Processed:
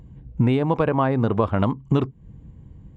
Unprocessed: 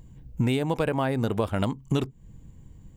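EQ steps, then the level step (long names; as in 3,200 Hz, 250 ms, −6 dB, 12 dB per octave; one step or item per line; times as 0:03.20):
high-pass filter 40 Hz
dynamic equaliser 1,100 Hz, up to +7 dB, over −48 dBFS, Q 3.5
head-to-tape spacing loss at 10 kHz 28 dB
+6.0 dB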